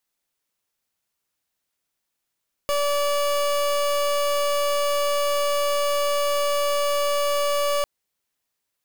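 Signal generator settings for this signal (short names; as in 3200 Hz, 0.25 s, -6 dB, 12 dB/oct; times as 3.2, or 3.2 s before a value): pulse 577 Hz, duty 30% -22 dBFS 5.15 s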